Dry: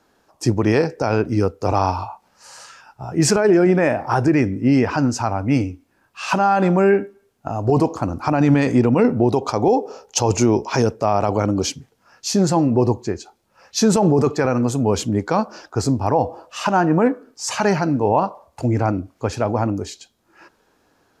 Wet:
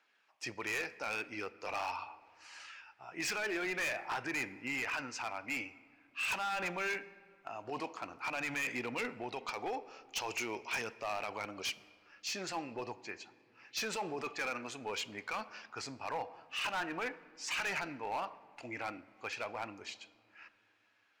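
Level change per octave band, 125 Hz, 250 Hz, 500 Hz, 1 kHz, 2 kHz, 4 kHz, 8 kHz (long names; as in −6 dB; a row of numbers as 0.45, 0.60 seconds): −34.5, −28.0, −24.0, −18.5, −7.5, −11.0, −17.5 decibels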